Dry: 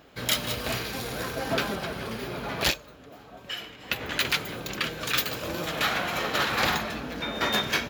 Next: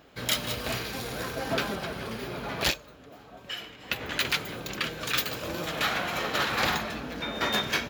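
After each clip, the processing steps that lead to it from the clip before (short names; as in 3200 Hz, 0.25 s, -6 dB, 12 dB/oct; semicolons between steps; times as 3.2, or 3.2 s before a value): bell 12000 Hz -2 dB 0.27 oct; gain -1.5 dB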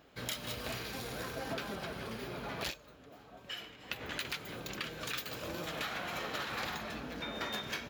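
compressor, threshold -29 dBFS, peak gain reduction 8 dB; gain -6 dB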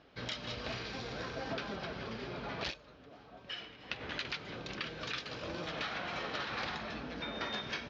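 steep low-pass 5800 Hz 48 dB/oct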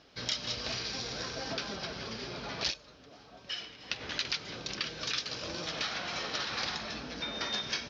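bell 5600 Hz +14.5 dB 1.1 oct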